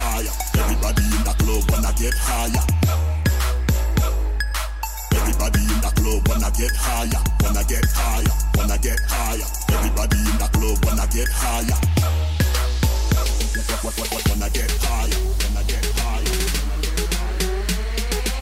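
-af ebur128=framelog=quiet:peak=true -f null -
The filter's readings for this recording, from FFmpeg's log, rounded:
Integrated loudness:
  I:         -21.2 LUFS
  Threshold: -31.2 LUFS
Loudness range:
  LRA:         2.0 LU
  Threshold: -41.1 LUFS
  LRA low:   -22.3 LUFS
  LRA high:  -20.3 LUFS
True peak:
  Peak:       -8.6 dBFS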